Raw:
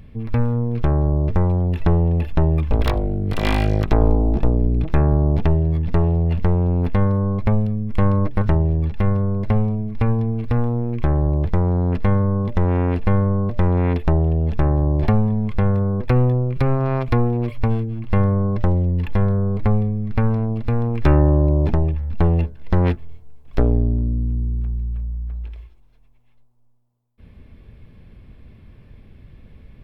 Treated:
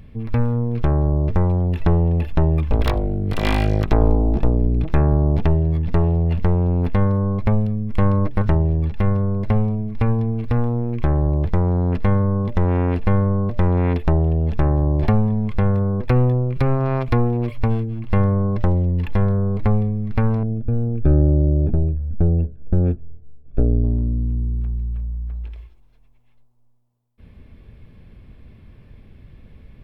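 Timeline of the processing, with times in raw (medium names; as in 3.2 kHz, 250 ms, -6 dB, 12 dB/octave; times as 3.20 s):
20.43–23.84 s: boxcar filter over 44 samples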